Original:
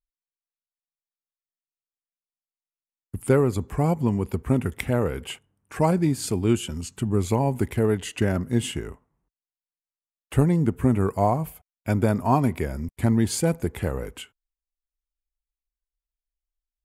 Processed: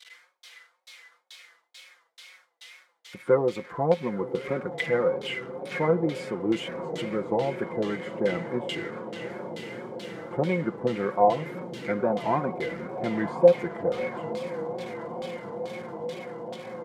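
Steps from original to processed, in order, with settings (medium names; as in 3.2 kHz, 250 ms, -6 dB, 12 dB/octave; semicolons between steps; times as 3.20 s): zero-crossing glitches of -20 dBFS; high-pass 210 Hz 12 dB/octave; band-stop 2.7 kHz, Q 9.8; comb 5.7 ms, depth 54%; echo that smears into a reverb 1065 ms, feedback 79%, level -11 dB; LFO low-pass saw down 2.3 Hz 680–3700 Hz; expander -44 dBFS; small resonant body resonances 500/2100 Hz, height 13 dB, ringing for 90 ms; wow and flutter 82 cents; trim -6.5 dB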